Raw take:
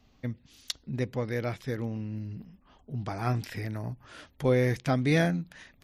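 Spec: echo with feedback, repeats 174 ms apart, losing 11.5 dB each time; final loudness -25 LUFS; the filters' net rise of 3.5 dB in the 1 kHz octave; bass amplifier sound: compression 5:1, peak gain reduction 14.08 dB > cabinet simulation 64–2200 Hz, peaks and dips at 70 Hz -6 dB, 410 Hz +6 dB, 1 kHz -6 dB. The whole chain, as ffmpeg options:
-af "equalizer=f=1000:t=o:g=7.5,aecho=1:1:174|348|522:0.266|0.0718|0.0194,acompressor=threshold=0.02:ratio=5,highpass=f=64:w=0.5412,highpass=f=64:w=1.3066,equalizer=f=70:t=q:w=4:g=-6,equalizer=f=410:t=q:w=4:g=6,equalizer=f=1000:t=q:w=4:g=-6,lowpass=f=2200:w=0.5412,lowpass=f=2200:w=1.3066,volume=4.73"

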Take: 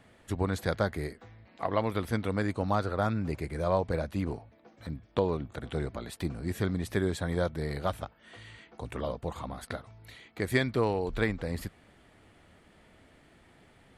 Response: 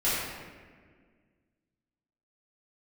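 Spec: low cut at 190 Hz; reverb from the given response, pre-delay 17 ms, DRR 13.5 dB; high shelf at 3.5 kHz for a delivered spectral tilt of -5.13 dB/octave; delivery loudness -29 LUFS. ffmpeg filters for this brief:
-filter_complex "[0:a]highpass=190,highshelf=f=3500:g=-6,asplit=2[s0][s1];[1:a]atrim=start_sample=2205,adelay=17[s2];[s1][s2]afir=irnorm=-1:irlink=0,volume=0.0531[s3];[s0][s3]amix=inputs=2:normalize=0,volume=1.68"

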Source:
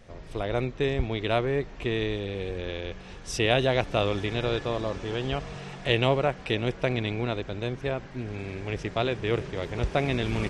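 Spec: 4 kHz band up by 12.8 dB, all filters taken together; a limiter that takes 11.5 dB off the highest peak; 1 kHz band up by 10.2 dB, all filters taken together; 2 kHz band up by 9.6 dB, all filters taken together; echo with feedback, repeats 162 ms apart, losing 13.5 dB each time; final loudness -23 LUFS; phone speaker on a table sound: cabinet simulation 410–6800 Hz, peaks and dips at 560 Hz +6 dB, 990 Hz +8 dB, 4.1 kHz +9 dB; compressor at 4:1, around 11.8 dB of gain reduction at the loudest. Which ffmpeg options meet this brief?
-af "equalizer=f=1000:t=o:g=6.5,equalizer=f=2000:t=o:g=7,equalizer=f=4000:t=o:g=8.5,acompressor=threshold=0.0501:ratio=4,alimiter=limit=0.0794:level=0:latency=1,highpass=f=410:w=0.5412,highpass=f=410:w=1.3066,equalizer=f=560:t=q:w=4:g=6,equalizer=f=990:t=q:w=4:g=8,equalizer=f=4100:t=q:w=4:g=9,lowpass=f=6800:w=0.5412,lowpass=f=6800:w=1.3066,aecho=1:1:162|324:0.211|0.0444,volume=3.16"

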